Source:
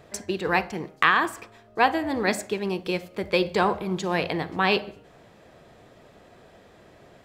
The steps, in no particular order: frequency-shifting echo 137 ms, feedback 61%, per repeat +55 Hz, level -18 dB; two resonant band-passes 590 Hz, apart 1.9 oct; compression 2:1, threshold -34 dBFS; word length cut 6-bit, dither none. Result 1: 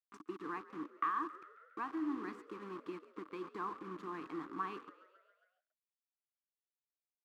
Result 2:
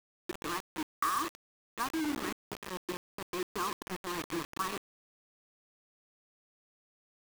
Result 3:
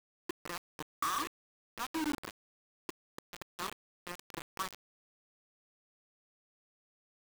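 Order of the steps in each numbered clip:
compression > word length cut > two resonant band-passes > frequency-shifting echo; two resonant band-passes > compression > frequency-shifting echo > word length cut; compression > two resonant band-passes > frequency-shifting echo > word length cut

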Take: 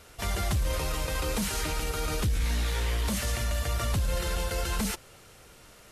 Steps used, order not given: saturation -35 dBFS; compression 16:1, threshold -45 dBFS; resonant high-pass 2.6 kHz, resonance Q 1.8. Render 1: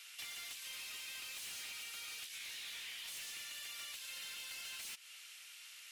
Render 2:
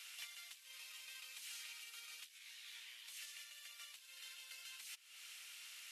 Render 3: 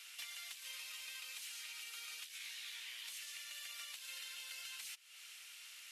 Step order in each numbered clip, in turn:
resonant high-pass > saturation > compression; compression > resonant high-pass > saturation; resonant high-pass > compression > saturation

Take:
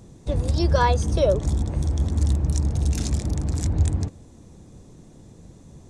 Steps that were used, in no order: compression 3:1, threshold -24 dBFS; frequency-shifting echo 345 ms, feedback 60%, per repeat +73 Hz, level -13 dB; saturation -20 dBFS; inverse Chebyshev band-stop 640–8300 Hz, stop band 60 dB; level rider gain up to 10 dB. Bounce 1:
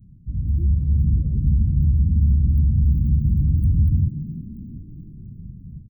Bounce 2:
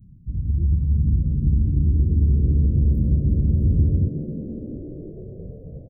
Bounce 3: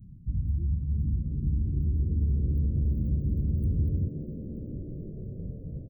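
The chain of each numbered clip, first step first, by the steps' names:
saturation > compression > level rider > frequency-shifting echo > inverse Chebyshev band-stop; compression > inverse Chebyshev band-stop > saturation > level rider > frequency-shifting echo; level rider > compression > saturation > inverse Chebyshev band-stop > frequency-shifting echo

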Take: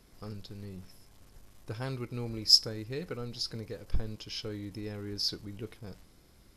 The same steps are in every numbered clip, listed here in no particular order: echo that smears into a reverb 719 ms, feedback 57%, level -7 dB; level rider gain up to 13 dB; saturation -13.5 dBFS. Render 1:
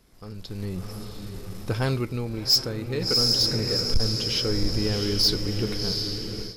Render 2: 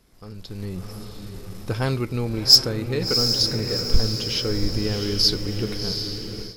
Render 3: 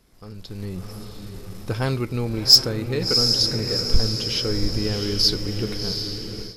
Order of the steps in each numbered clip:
echo that smears into a reverb > level rider > saturation; saturation > echo that smears into a reverb > level rider; echo that smears into a reverb > saturation > level rider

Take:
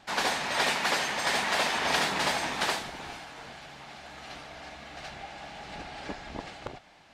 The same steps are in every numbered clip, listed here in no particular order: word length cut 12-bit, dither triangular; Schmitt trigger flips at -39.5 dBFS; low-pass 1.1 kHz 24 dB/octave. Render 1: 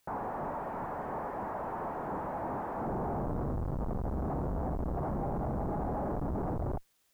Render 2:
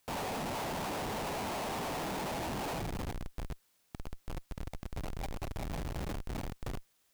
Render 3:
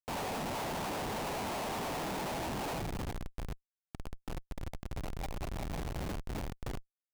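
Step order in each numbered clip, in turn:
Schmitt trigger > low-pass > word length cut; low-pass > Schmitt trigger > word length cut; low-pass > word length cut > Schmitt trigger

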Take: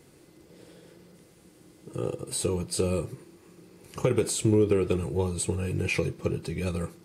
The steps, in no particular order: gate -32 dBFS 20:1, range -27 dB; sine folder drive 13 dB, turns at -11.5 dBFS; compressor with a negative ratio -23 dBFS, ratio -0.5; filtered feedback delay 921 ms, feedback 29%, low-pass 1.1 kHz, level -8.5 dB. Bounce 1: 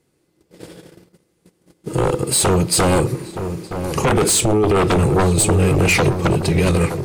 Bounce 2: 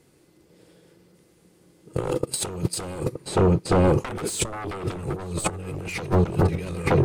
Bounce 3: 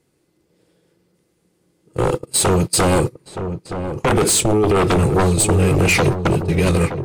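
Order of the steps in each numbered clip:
compressor with a negative ratio > sine folder > filtered feedback delay > gate; gate > sine folder > filtered feedback delay > compressor with a negative ratio; gate > compressor with a negative ratio > sine folder > filtered feedback delay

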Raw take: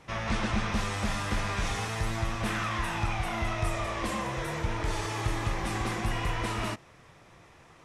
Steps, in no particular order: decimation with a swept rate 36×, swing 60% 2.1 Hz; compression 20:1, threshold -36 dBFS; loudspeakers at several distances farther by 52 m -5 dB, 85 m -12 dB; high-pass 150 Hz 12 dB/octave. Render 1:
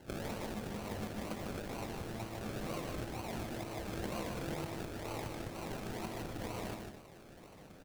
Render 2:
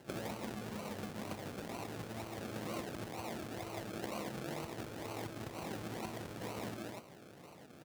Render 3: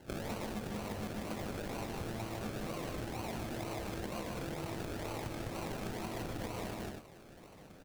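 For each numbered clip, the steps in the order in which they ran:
compression > high-pass > decimation with a swept rate > loudspeakers at several distances; loudspeakers at several distances > compression > decimation with a swept rate > high-pass; high-pass > decimation with a swept rate > loudspeakers at several distances > compression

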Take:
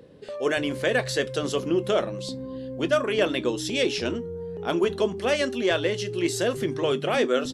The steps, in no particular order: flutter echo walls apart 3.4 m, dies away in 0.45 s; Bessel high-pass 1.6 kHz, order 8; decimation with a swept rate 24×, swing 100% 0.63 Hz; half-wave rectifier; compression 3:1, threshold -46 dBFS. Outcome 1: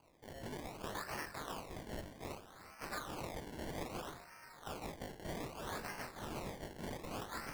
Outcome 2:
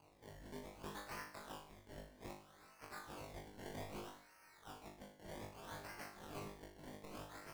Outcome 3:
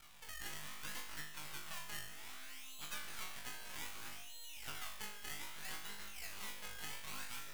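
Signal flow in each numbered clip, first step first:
half-wave rectifier > Bessel high-pass > compression > flutter echo > decimation with a swept rate; half-wave rectifier > compression > Bessel high-pass > decimation with a swept rate > flutter echo; decimation with a swept rate > Bessel high-pass > half-wave rectifier > flutter echo > compression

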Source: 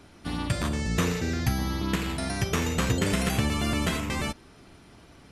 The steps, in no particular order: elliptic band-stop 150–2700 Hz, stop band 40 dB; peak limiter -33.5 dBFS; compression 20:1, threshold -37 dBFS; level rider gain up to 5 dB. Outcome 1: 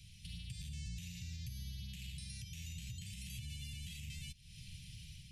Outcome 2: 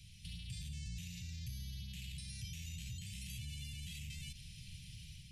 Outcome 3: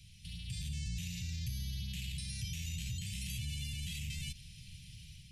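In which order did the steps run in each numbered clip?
level rider > compression > peak limiter > elliptic band-stop; level rider > peak limiter > compression > elliptic band-stop; peak limiter > elliptic band-stop > compression > level rider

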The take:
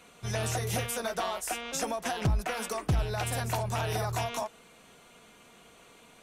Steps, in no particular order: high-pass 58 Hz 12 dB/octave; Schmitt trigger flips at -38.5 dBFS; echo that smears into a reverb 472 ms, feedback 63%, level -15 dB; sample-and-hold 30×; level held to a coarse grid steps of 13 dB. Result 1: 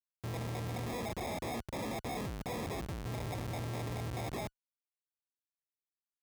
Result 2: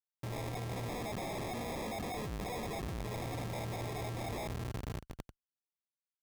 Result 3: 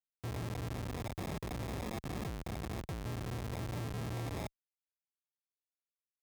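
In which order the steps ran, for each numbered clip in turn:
level held to a coarse grid > echo that smears into a reverb > Schmitt trigger > sample-and-hold > high-pass; echo that smears into a reverb > Schmitt trigger > high-pass > level held to a coarse grid > sample-and-hold; echo that smears into a reverb > sample-and-hold > level held to a coarse grid > Schmitt trigger > high-pass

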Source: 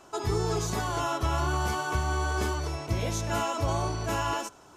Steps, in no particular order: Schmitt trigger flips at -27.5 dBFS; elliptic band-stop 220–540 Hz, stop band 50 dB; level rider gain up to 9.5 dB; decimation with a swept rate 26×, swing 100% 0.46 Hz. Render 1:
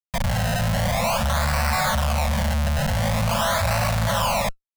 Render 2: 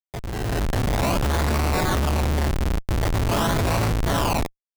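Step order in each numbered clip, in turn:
level rider > Schmitt trigger > decimation with a swept rate > elliptic band-stop; decimation with a swept rate > elliptic band-stop > Schmitt trigger > level rider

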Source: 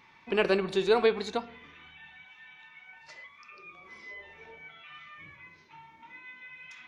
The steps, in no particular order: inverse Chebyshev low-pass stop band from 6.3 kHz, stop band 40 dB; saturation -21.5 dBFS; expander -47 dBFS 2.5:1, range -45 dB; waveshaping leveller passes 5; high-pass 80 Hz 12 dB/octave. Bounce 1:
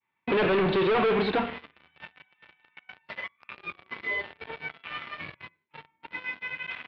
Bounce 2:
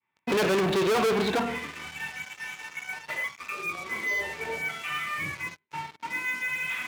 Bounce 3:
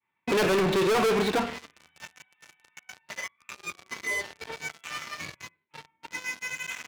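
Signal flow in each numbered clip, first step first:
expander > waveshaping leveller > high-pass > saturation > inverse Chebyshev low-pass; expander > inverse Chebyshev low-pass > saturation > waveshaping leveller > high-pass; expander > inverse Chebyshev low-pass > waveshaping leveller > high-pass > saturation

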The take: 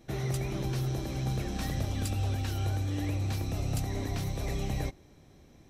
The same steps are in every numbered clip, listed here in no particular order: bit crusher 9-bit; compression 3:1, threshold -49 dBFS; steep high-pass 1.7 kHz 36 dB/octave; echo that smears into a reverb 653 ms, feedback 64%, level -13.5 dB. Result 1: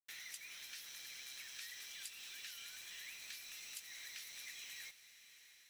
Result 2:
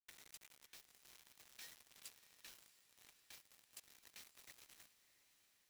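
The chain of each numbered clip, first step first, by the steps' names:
steep high-pass > bit crusher > compression > echo that smears into a reverb; compression > steep high-pass > bit crusher > echo that smears into a reverb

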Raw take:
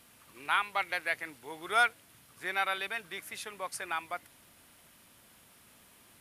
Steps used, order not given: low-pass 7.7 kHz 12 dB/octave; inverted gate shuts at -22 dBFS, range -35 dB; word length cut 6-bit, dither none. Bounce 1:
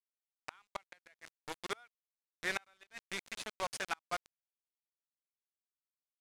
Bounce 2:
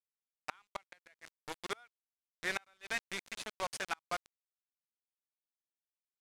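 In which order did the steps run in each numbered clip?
word length cut > inverted gate > low-pass; word length cut > low-pass > inverted gate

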